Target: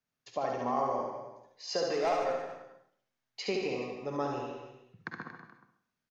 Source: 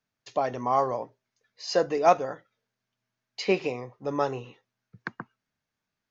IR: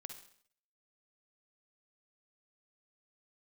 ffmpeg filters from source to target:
-filter_complex "[0:a]acompressor=threshold=-23dB:ratio=6,asettb=1/sr,asplit=3[link_01][link_02][link_03];[link_01]atrim=end=1.894[link_04];[link_02]atrim=start=1.89:end=2.3,asetpts=PTS-STARTPTS,afade=type=in:duration=0.004:curve=qsin,afade=type=out:start_time=0.406:duration=0.004:curve=qsin,asplit=2[link_05][link_06];[link_06]highpass=frequency=720:poles=1,volume=13dB,asoftclip=type=tanh:threshold=-18.5dB[link_07];[link_05][link_07]amix=inputs=2:normalize=0,lowpass=frequency=5700:poles=1,volume=-6dB[link_08];[link_03]atrim=start=2.296[link_09];[link_04][link_08]acrossfade=duration=0.004:curve1=hsin:curve2=qsin[link_10];[link_10][link_09]acrossfade=duration=0.004:curve1=qsin:curve2=hsin,aecho=1:1:70|147|231.7|324.9|427.4:0.631|0.398|0.251|0.158|0.1[link_11];[1:a]atrim=start_sample=2205[link_12];[link_11][link_12]afir=irnorm=-1:irlink=0"

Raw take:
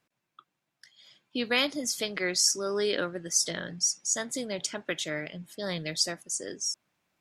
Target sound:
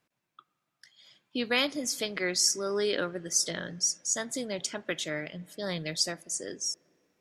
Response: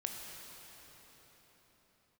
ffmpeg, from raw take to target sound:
-filter_complex "[0:a]asplit=2[link_01][link_02];[1:a]atrim=start_sample=2205,asetrate=88200,aresample=44100,lowpass=2200[link_03];[link_02][link_03]afir=irnorm=-1:irlink=0,volume=-14dB[link_04];[link_01][link_04]amix=inputs=2:normalize=0,volume=-1dB"

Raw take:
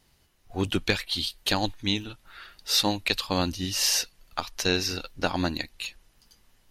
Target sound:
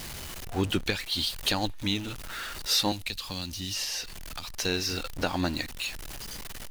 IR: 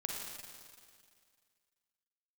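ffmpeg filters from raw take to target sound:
-filter_complex "[0:a]aeval=exprs='val(0)+0.5*0.0211*sgn(val(0))':channel_layout=same,alimiter=limit=-14dB:level=0:latency=1:release=443,asettb=1/sr,asplit=3[link_01][link_02][link_03];[link_01]atrim=end=2.924[link_04];[link_02]atrim=start=2.92:end=4.44,asetpts=PTS-STARTPTS,afade=type=in:duration=0.004:curve=qsin,afade=type=out:start_time=1.516:duration=0.004:curve=qsin,acrossover=split=220|2400|4800[link_05][link_06][link_07][link_08];[link_05]acompressor=threshold=-38dB:ratio=4[link_09];[link_06]acompressor=threshold=-44dB:ratio=4[link_10];[link_07]acompressor=threshold=-35dB:ratio=4[link_11];[link_08]acompressor=threshold=-39dB:ratio=4[link_12];[link_09][link_10][link_11][link_12]amix=inputs=4:normalize=0[link_13];[link_03]atrim=start=4.436[link_14];[link_04][link_13]acrossfade=duration=0.004:curve1=hsin:curve2=qsin[link_15];[link_15][link_14]acrossfade=duration=0.004:curve1=qsin:curve2=hsin"

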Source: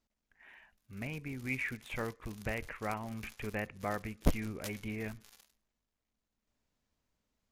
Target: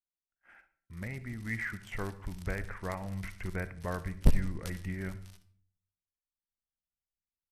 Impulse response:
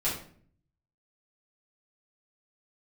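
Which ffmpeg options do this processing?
-filter_complex "[0:a]asubboost=boost=2:cutoff=220,agate=range=-26dB:threshold=-57dB:ratio=16:detection=peak,bandreject=frequency=394.4:width_type=h:width=4,bandreject=frequency=788.8:width_type=h:width=4,bandreject=frequency=1183.2:width_type=h:width=4,bandreject=frequency=1577.6:width_type=h:width=4,bandreject=frequency=1972:width_type=h:width=4,asetrate=38170,aresample=44100,atempo=1.15535,asplit=2[link_01][link_02];[1:a]atrim=start_sample=2205,adelay=57[link_03];[link_02][link_03]afir=irnorm=-1:irlink=0,volume=-23dB[link_04];[link_01][link_04]amix=inputs=2:normalize=0"

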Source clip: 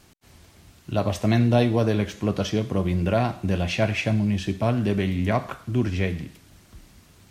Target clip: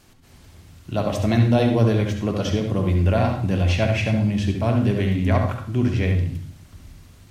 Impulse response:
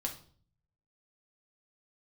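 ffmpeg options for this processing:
-filter_complex "[0:a]asplit=2[link_01][link_02];[link_02]lowshelf=frequency=140:gain=9[link_03];[1:a]atrim=start_sample=2205,highshelf=frequency=4700:gain=-6,adelay=69[link_04];[link_03][link_04]afir=irnorm=-1:irlink=0,volume=-5dB[link_05];[link_01][link_05]amix=inputs=2:normalize=0"

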